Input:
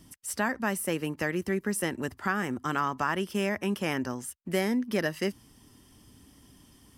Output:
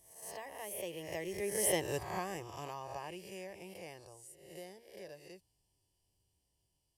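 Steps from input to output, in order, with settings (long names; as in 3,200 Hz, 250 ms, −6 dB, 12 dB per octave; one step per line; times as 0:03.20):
peak hold with a rise ahead of every peak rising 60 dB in 0.74 s
source passing by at 0:01.84, 20 m/s, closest 6 metres
phaser with its sweep stopped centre 580 Hz, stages 4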